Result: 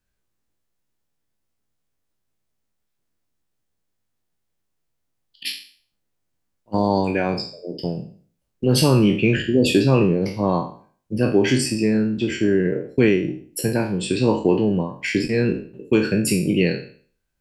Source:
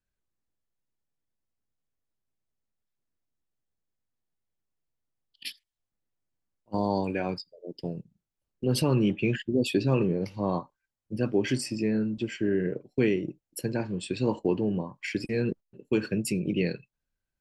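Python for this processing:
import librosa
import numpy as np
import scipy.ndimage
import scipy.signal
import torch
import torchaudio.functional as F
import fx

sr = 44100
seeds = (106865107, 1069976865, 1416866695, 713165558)

y = fx.spec_trails(x, sr, decay_s=0.46)
y = y * 10.0 ** (7.5 / 20.0)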